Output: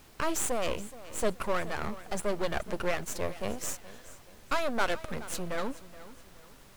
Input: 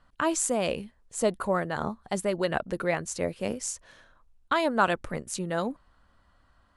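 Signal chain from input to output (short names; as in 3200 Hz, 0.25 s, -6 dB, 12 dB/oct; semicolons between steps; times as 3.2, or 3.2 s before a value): one diode to ground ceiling -17.5 dBFS; half-wave rectifier; added noise pink -59 dBFS; warbling echo 0.425 s, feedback 37%, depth 59 cents, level -17 dB; gain +3 dB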